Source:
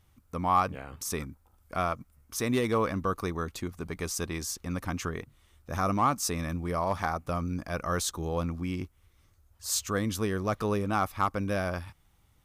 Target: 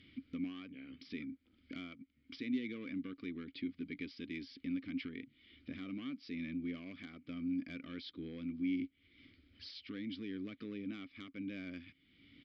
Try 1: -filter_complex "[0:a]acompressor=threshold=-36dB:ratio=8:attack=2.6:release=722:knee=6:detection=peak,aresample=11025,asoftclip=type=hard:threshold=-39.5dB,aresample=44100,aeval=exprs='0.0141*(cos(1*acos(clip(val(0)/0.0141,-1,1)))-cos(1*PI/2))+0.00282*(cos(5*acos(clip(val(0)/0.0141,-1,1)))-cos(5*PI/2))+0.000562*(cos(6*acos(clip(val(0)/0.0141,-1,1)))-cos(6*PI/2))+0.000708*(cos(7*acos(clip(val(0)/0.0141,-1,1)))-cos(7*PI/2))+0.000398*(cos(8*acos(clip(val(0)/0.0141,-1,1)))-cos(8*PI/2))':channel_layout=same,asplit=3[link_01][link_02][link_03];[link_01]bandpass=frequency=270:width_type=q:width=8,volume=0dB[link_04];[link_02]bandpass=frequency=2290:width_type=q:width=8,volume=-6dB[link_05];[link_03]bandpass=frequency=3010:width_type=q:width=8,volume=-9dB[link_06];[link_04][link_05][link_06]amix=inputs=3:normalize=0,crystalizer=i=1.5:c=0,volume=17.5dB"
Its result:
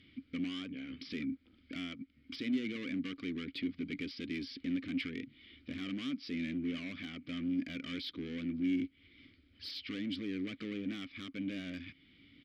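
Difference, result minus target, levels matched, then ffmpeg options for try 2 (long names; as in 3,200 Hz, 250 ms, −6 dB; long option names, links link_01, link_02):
downward compressor: peak gain reduction −9 dB
-filter_complex "[0:a]acompressor=threshold=-46dB:ratio=8:attack=2.6:release=722:knee=6:detection=peak,aresample=11025,asoftclip=type=hard:threshold=-39.5dB,aresample=44100,aeval=exprs='0.0141*(cos(1*acos(clip(val(0)/0.0141,-1,1)))-cos(1*PI/2))+0.00282*(cos(5*acos(clip(val(0)/0.0141,-1,1)))-cos(5*PI/2))+0.000562*(cos(6*acos(clip(val(0)/0.0141,-1,1)))-cos(6*PI/2))+0.000708*(cos(7*acos(clip(val(0)/0.0141,-1,1)))-cos(7*PI/2))+0.000398*(cos(8*acos(clip(val(0)/0.0141,-1,1)))-cos(8*PI/2))':channel_layout=same,asplit=3[link_01][link_02][link_03];[link_01]bandpass=frequency=270:width_type=q:width=8,volume=0dB[link_04];[link_02]bandpass=frequency=2290:width_type=q:width=8,volume=-6dB[link_05];[link_03]bandpass=frequency=3010:width_type=q:width=8,volume=-9dB[link_06];[link_04][link_05][link_06]amix=inputs=3:normalize=0,crystalizer=i=1.5:c=0,volume=17.5dB"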